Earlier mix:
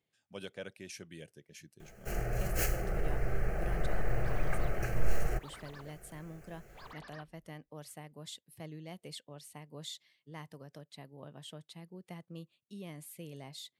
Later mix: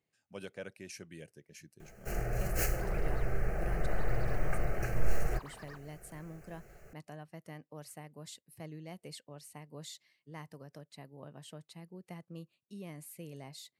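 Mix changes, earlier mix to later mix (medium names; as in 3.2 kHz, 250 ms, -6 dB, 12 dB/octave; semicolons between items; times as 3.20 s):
second sound: entry -1.45 s; master: add peaking EQ 3.4 kHz -9 dB 0.28 oct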